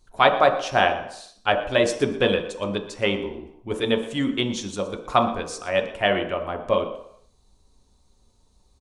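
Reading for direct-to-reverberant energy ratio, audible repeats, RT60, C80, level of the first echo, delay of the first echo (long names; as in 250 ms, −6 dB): 4.0 dB, 1, 0.70 s, 11.0 dB, −16.5 dB, 118 ms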